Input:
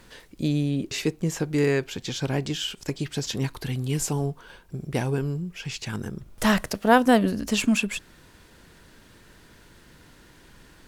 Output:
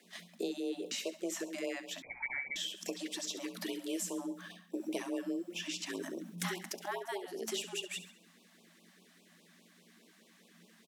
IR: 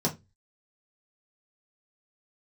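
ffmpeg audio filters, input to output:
-filter_complex "[0:a]agate=range=0.224:threshold=0.00631:ratio=16:detection=peak,tiltshelf=f=670:g=-4.5,acompressor=threshold=0.0112:ratio=5,afreqshift=170,aecho=1:1:68|136|204|272|340:0.237|0.111|0.0524|0.0246|0.0116,asplit=2[s0][s1];[1:a]atrim=start_sample=2205,lowshelf=f=390:g=7[s2];[s1][s2]afir=irnorm=-1:irlink=0,volume=0.0891[s3];[s0][s3]amix=inputs=2:normalize=0,asettb=1/sr,asplit=3[s4][s5][s6];[s4]atrim=end=2.024[s7];[s5]atrim=start=2.02:end=2.56,asetpts=PTS-STARTPTS,afade=t=in:d=0.004:c=qsin,afade=t=out:st=0.536:d=0.004:c=qsin,lowpass=f=2200:t=q:w=0.5098,lowpass=f=2200:t=q:w=0.6013,lowpass=f=2200:t=q:w=0.9,lowpass=f=2200:t=q:w=2.563,afreqshift=-2600[s8];[s6]atrim=start=2.556[s9];[s7][s8]acrossfade=d=0.004:c1=hsin:c2=qsin[s10];[s10][s9]acrossfade=d=0.004:c1=qsin:c2=hsin,afftfilt=real='re*(1-between(b*sr/1024,370*pow(1700/370,0.5+0.5*sin(2*PI*4.9*pts/sr))/1.41,370*pow(1700/370,0.5+0.5*sin(2*PI*4.9*pts/sr))*1.41))':imag='im*(1-between(b*sr/1024,370*pow(1700/370,0.5+0.5*sin(2*PI*4.9*pts/sr))/1.41,370*pow(1700/370,0.5+0.5*sin(2*PI*4.9*pts/sr))*1.41))':win_size=1024:overlap=0.75"

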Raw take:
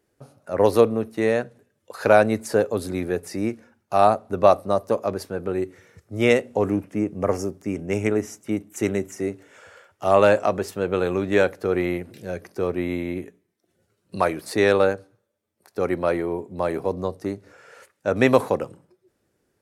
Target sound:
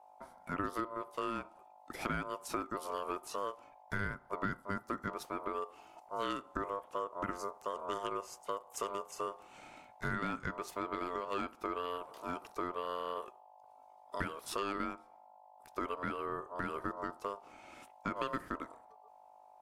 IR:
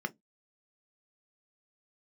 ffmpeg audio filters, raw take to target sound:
-af "aeval=exprs='val(0)+0.00282*(sin(2*PI*50*n/s)+sin(2*PI*2*50*n/s)/2+sin(2*PI*3*50*n/s)/3+sin(2*PI*4*50*n/s)/4+sin(2*PI*5*50*n/s)/5)':c=same,acompressor=threshold=0.0447:ratio=6,aeval=exprs='val(0)*sin(2*PI*800*n/s)':c=same,volume=0.596"

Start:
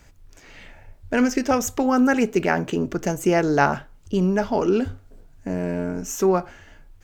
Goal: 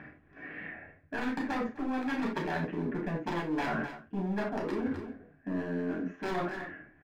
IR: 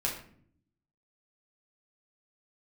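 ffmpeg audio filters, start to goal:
-filter_complex "[0:a]asuperstop=centerf=900:order=4:qfactor=4.1,aresample=16000,aeval=exprs='(mod(3.76*val(0)+1,2)-1)/3.76':c=same,aresample=44100,acompressor=mode=upward:threshold=0.00794:ratio=2.5,highpass=190,equalizer=f=190:t=q:w=4:g=5,equalizer=f=290:t=q:w=4:g=6,equalizer=f=560:t=q:w=4:g=-4,equalizer=f=860:t=q:w=4:g=7,equalizer=f=1300:t=q:w=4:g=-3,equalizer=f=1800:t=q:w=4:g=8,lowpass=f=2100:w=0.5412,lowpass=f=2100:w=1.3066,asoftclip=type=hard:threshold=0.133,aecho=1:1:255:0.075[s0];[1:a]atrim=start_sample=2205,atrim=end_sample=4410[s1];[s0][s1]afir=irnorm=-1:irlink=0,areverse,acompressor=threshold=0.0355:ratio=5,areverse,volume=0.75"

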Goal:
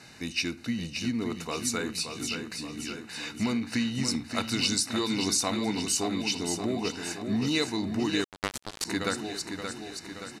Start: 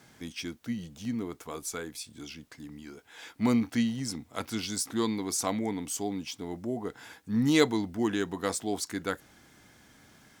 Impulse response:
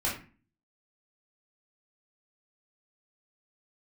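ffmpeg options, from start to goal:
-filter_complex "[0:a]asuperstop=centerf=3300:order=20:qfactor=6,acompressor=threshold=0.0316:ratio=8,equalizer=f=3400:t=o:w=0.95:g=12.5,aecho=1:1:575|1150|1725|2300|2875|3450|4025:0.447|0.255|0.145|0.0827|0.0472|0.0269|0.0153,asplit=2[s0][s1];[1:a]atrim=start_sample=2205,adelay=29[s2];[s1][s2]afir=irnorm=-1:irlink=0,volume=0.0562[s3];[s0][s3]amix=inputs=2:normalize=0,asettb=1/sr,asplit=3[s4][s5][s6];[s4]atrim=end=8.244[s7];[s5]atrim=start=8.24:end=8.85,asetpts=PTS-STARTPTS,afade=t=in:d=0.004:c=qsin,afade=t=out:st=0.606:d=0.004:c=qsin,acrusher=bits=3:mix=0:aa=0.5[s8];[s6]atrim=start=8.846[s9];[s7][s8]acrossfade=d=0.004:c1=hsin:c2=qsin[s10];[s10][s9]acrossfade=d=0.004:c1=qsin:c2=hsin,lowpass=f=12000:w=0.5412,lowpass=f=12000:w=1.3066,volume=1.68"

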